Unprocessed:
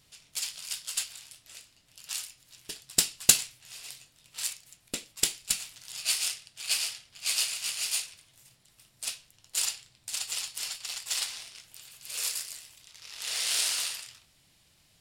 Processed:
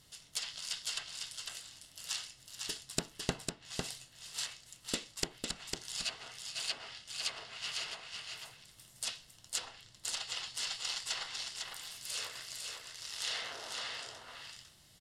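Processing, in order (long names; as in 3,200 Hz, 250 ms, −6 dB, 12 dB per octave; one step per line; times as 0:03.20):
notch filter 2,400 Hz, Q 6.2
treble cut that deepens with the level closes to 930 Hz, closed at −25 dBFS
single-tap delay 502 ms −4.5 dB
level +1 dB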